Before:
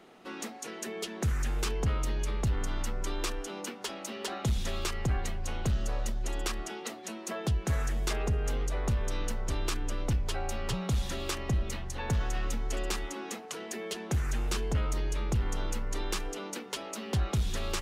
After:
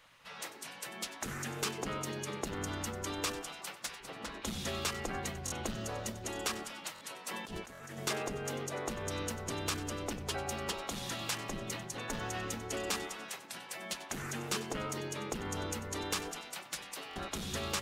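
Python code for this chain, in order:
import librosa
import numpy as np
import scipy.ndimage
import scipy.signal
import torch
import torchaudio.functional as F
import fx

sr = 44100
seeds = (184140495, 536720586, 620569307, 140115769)

y = fx.high_shelf(x, sr, hz=12000.0, db=3.0)
y = fx.spec_gate(y, sr, threshold_db=-10, keep='weak')
y = fx.tilt_eq(y, sr, slope=-3.0, at=(4.0, 4.42))
y = fx.echo_feedback(y, sr, ms=95, feedback_pct=54, wet_db=-16)
y = fx.over_compress(y, sr, threshold_db=-43.0, ratio=-0.5, at=(7.28, 7.98))
y = fx.buffer_glitch(y, sr, at_s=(5.45, 6.94, 7.73, 17.09), block=1024, repeats=2)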